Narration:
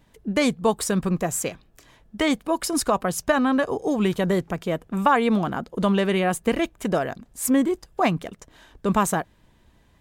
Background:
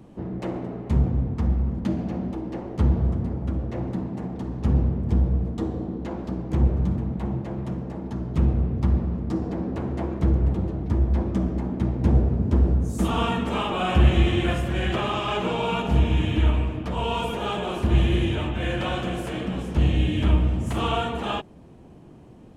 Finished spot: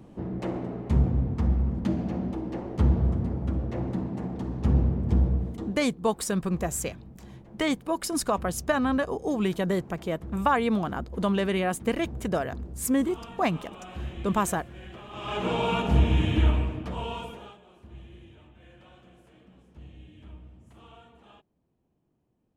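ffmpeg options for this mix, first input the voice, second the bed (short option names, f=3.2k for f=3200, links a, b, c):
-filter_complex "[0:a]adelay=5400,volume=-4.5dB[a];[1:a]volume=16.5dB,afade=t=out:st=5.26:d=0.57:silence=0.133352,afade=t=in:st=15.1:d=0.44:silence=0.125893,afade=t=out:st=16.4:d=1.18:silence=0.0501187[b];[a][b]amix=inputs=2:normalize=0"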